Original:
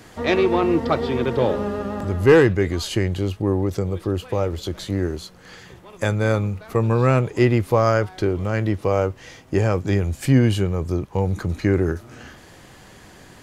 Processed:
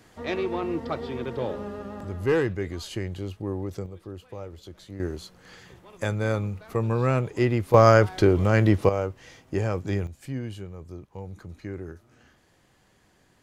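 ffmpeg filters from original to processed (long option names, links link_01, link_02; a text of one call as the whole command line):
ffmpeg -i in.wav -af "asetnsamples=nb_out_samples=441:pad=0,asendcmd='3.86 volume volume -16dB;5 volume volume -6dB;7.74 volume volume 2.5dB;8.89 volume volume -7dB;10.07 volume volume -17dB',volume=-10dB" out.wav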